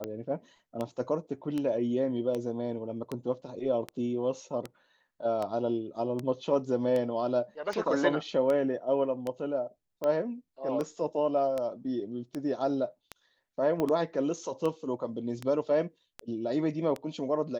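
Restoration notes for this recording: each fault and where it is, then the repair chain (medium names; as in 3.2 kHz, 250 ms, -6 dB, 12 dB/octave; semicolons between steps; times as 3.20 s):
tick 78 rpm -20 dBFS
13.80 s: pop -18 dBFS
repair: de-click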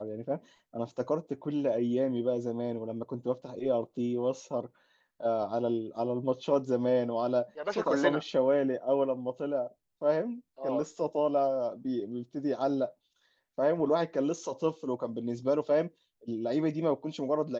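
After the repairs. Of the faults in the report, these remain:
13.80 s: pop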